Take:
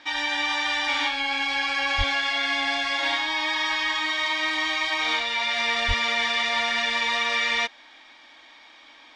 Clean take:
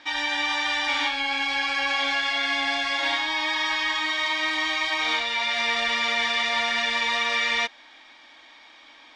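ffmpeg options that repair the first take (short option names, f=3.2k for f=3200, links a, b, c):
-filter_complex "[0:a]asplit=3[a][b][c];[a]afade=t=out:st=1.97:d=0.02[d];[b]highpass=f=140:w=0.5412,highpass=f=140:w=1.3066,afade=t=in:st=1.97:d=0.02,afade=t=out:st=2.09:d=0.02[e];[c]afade=t=in:st=2.09:d=0.02[f];[d][e][f]amix=inputs=3:normalize=0,asplit=3[g][h][i];[g]afade=t=out:st=5.87:d=0.02[j];[h]highpass=f=140:w=0.5412,highpass=f=140:w=1.3066,afade=t=in:st=5.87:d=0.02,afade=t=out:st=5.99:d=0.02[k];[i]afade=t=in:st=5.99:d=0.02[l];[j][k][l]amix=inputs=3:normalize=0"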